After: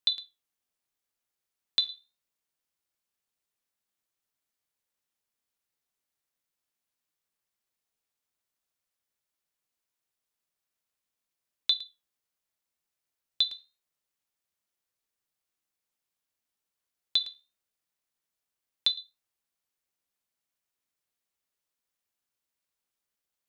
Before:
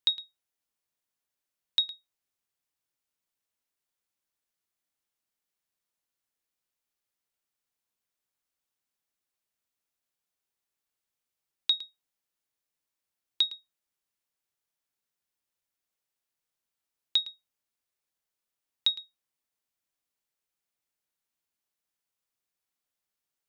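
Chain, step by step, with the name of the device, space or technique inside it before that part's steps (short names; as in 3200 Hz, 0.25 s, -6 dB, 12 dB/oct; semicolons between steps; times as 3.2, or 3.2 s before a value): alien voice (ring modulator 230 Hz; flange 0.26 Hz, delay 8.9 ms, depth 5.4 ms, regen -75%); gain +7.5 dB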